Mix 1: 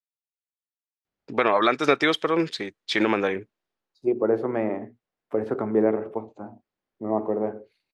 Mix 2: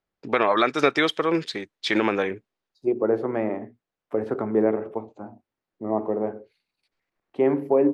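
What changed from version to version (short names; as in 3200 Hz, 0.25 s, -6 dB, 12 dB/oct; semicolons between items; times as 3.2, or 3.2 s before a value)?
first voice: entry -1.05 s; second voice: entry -1.20 s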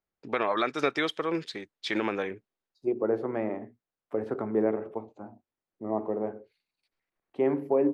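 first voice -7.0 dB; second voice -5.0 dB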